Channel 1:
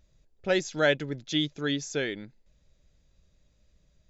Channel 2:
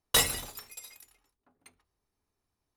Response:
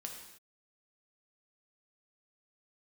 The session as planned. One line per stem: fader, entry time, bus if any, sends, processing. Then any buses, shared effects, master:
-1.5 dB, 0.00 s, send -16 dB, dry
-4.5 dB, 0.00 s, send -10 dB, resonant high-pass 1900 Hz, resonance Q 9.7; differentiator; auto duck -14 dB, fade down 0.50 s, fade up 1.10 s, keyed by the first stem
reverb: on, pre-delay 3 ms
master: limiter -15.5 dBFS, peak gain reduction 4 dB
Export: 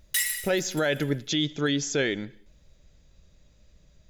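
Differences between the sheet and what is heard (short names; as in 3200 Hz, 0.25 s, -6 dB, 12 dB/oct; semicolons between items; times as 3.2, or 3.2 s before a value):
stem 1 -1.5 dB -> +6.5 dB; stem 2 -4.5 dB -> +6.0 dB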